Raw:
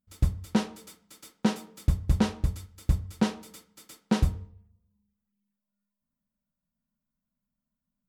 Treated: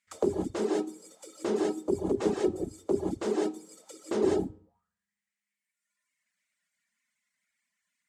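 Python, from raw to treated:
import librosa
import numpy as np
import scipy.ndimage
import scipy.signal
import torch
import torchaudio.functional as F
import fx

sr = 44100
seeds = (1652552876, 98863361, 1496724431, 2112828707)

y = fx.fold_sine(x, sr, drive_db=18, ceiling_db=-10.5)
y = fx.high_shelf(y, sr, hz=3300.0, db=9.5)
y = fx.rev_gated(y, sr, seeds[0], gate_ms=210, shape='rising', drr_db=-2.5)
y = fx.dereverb_blind(y, sr, rt60_s=1.6)
y = fx.auto_wah(y, sr, base_hz=380.0, top_hz=2100.0, q=6.5, full_db=-16.5, direction='down')
y = fx.peak_eq(y, sr, hz=7800.0, db=13.0, octaves=0.96)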